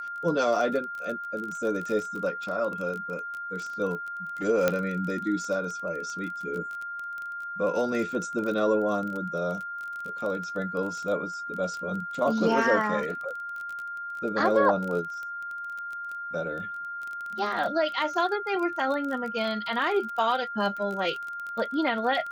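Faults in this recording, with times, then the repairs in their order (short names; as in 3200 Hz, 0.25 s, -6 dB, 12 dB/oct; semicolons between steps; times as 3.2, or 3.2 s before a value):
crackle 23/s -32 dBFS
tone 1400 Hz -33 dBFS
4.68 pop -9 dBFS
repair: de-click; notch 1400 Hz, Q 30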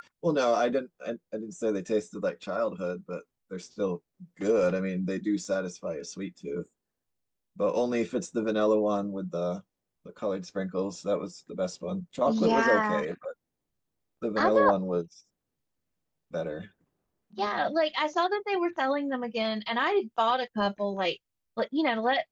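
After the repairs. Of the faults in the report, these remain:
none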